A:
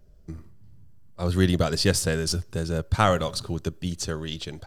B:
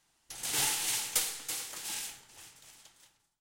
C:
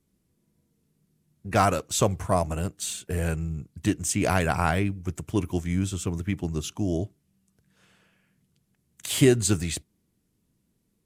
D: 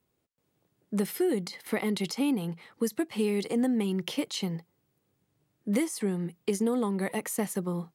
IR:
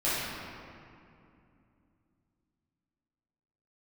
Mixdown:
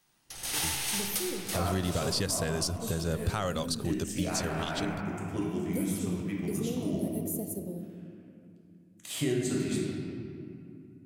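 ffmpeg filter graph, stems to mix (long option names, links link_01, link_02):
-filter_complex "[0:a]equalizer=frequency=12000:width=0.39:gain=7,adelay=350,volume=0dB[link_01];[1:a]bandreject=frequency=7400:width=7,volume=-0.5dB,asplit=2[link_02][link_03];[link_03]volume=-13dB[link_04];[2:a]lowshelf=frequency=120:width_type=q:width=1.5:gain=-7,bandreject=frequency=45.47:width_type=h:width=4,bandreject=frequency=90.94:width_type=h:width=4,bandreject=frequency=136.41:width_type=h:width=4,volume=-14dB,asplit=2[link_05][link_06];[link_06]volume=-4.5dB[link_07];[3:a]firequalizer=gain_entry='entry(680,0);entry(1000,-28);entry(3800,-6);entry(14000,15)':delay=0.05:min_phase=1,volume=-10dB,asplit=2[link_08][link_09];[link_09]volume=-15dB[link_10];[4:a]atrim=start_sample=2205[link_11];[link_04][link_07][link_10]amix=inputs=3:normalize=0[link_12];[link_12][link_11]afir=irnorm=-1:irlink=0[link_13];[link_01][link_02][link_05][link_08][link_13]amix=inputs=5:normalize=0,alimiter=limit=-19dB:level=0:latency=1:release=374"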